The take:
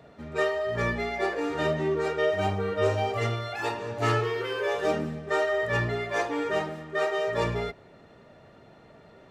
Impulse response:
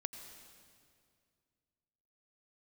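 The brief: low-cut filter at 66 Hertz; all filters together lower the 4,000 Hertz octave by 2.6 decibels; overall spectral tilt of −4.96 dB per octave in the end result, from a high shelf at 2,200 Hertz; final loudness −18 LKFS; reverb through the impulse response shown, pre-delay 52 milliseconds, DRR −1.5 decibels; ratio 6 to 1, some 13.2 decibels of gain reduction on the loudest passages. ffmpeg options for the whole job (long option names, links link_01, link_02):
-filter_complex "[0:a]highpass=66,highshelf=frequency=2200:gain=3,equalizer=frequency=4000:width_type=o:gain=-6.5,acompressor=threshold=-35dB:ratio=6,asplit=2[link_01][link_02];[1:a]atrim=start_sample=2205,adelay=52[link_03];[link_02][link_03]afir=irnorm=-1:irlink=0,volume=3dB[link_04];[link_01][link_04]amix=inputs=2:normalize=0,volume=16dB"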